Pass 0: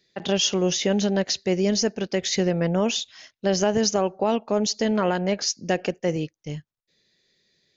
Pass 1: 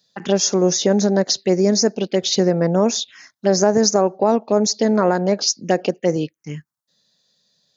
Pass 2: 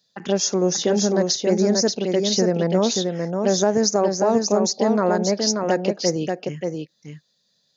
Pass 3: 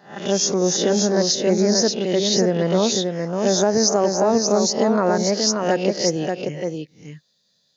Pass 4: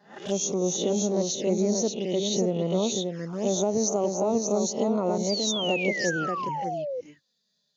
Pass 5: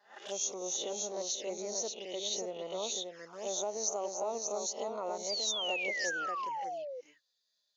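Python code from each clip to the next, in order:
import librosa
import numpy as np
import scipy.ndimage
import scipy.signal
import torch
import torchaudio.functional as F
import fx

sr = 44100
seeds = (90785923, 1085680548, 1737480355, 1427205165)

y1 = scipy.signal.sosfilt(scipy.signal.butter(2, 170.0, 'highpass', fs=sr, output='sos'), x)
y1 = fx.env_phaser(y1, sr, low_hz=360.0, high_hz=3000.0, full_db=-20.0)
y1 = y1 * librosa.db_to_amplitude(7.0)
y2 = y1 + 10.0 ** (-4.5 / 20.0) * np.pad(y1, (int(583 * sr / 1000.0), 0))[:len(y1)]
y2 = y2 * librosa.db_to_amplitude(-3.5)
y3 = fx.spec_swells(y2, sr, rise_s=0.4)
y4 = fx.env_flanger(y3, sr, rest_ms=5.0, full_db=-17.5)
y4 = fx.spec_paint(y4, sr, seeds[0], shape='fall', start_s=5.29, length_s=1.72, low_hz=480.0, high_hz=4900.0, level_db=-25.0)
y4 = y4 * librosa.db_to_amplitude(-6.0)
y5 = scipy.signal.sosfilt(scipy.signal.butter(2, 670.0, 'highpass', fs=sr, output='sos'), y4)
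y5 = y5 * librosa.db_to_amplitude(-5.0)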